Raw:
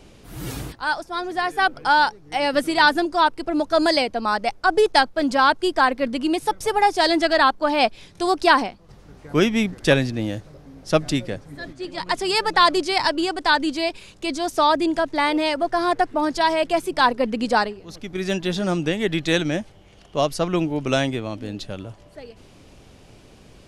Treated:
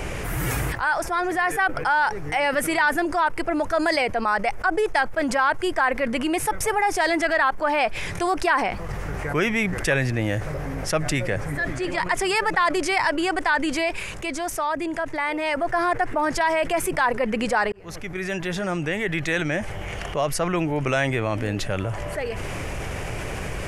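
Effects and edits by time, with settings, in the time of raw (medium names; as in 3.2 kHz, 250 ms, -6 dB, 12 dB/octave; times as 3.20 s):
13.77–15.71 s: dip -14 dB, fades 0.30 s
17.72–21.01 s: fade in
whole clip: ten-band graphic EQ 250 Hz -9 dB, 2 kHz +8 dB, 4 kHz -12 dB; level flattener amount 70%; trim -8 dB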